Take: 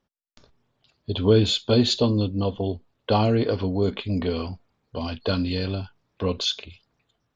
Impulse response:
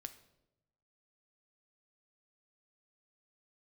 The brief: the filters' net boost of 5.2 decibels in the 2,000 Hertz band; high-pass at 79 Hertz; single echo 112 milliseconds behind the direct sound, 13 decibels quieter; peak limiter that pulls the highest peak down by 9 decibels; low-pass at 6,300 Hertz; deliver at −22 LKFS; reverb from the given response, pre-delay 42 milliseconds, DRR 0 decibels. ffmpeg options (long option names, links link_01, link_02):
-filter_complex "[0:a]highpass=79,lowpass=6300,equalizer=frequency=2000:width_type=o:gain=7.5,alimiter=limit=-15dB:level=0:latency=1,aecho=1:1:112:0.224,asplit=2[link_01][link_02];[1:a]atrim=start_sample=2205,adelay=42[link_03];[link_02][link_03]afir=irnorm=-1:irlink=0,volume=4.5dB[link_04];[link_01][link_04]amix=inputs=2:normalize=0,volume=1dB"